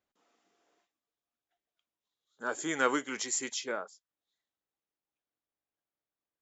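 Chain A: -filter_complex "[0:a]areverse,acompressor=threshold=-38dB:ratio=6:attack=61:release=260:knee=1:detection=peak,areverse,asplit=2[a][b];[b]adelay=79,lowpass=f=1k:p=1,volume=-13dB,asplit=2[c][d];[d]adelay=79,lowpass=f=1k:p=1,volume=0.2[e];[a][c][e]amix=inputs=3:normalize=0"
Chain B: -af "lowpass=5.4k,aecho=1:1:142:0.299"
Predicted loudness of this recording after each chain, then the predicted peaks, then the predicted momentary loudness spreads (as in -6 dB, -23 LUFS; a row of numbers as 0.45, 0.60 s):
-38.0, -33.5 LUFS; -23.0, -12.0 dBFS; 6, 10 LU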